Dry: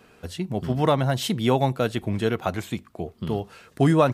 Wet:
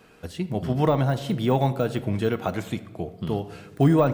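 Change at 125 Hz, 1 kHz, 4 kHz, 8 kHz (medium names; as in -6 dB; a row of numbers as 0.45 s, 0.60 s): +1.0 dB, -2.0 dB, -5.5 dB, -7.5 dB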